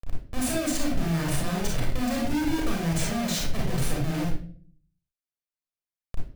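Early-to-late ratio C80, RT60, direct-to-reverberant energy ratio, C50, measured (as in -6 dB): 8.5 dB, 0.45 s, -3.0 dB, 1.5 dB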